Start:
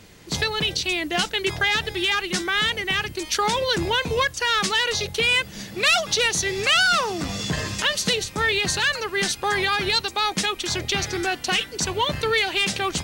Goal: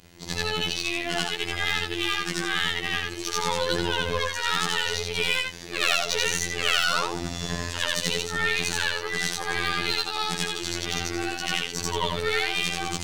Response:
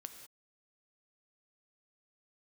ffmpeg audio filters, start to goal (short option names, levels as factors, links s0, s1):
-af "afftfilt=real='re':imag='-im':win_size=8192:overlap=0.75,aeval=exprs='0.237*(cos(1*acos(clip(val(0)/0.237,-1,1)))-cos(1*PI/2))+0.015*(cos(8*acos(clip(val(0)/0.237,-1,1)))-cos(8*PI/2))':c=same,afftfilt=real='hypot(re,im)*cos(PI*b)':imag='0':win_size=2048:overlap=0.75,volume=1.5"